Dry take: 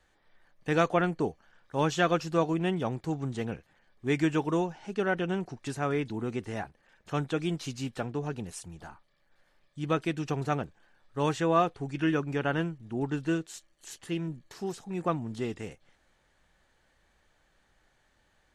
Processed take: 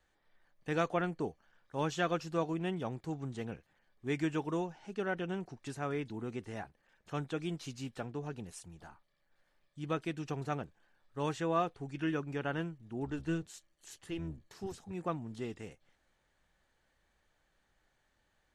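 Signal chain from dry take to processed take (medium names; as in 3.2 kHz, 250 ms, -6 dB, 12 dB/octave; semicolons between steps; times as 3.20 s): 13.05–14.92 s: octave divider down 1 oct, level -5 dB; trim -7 dB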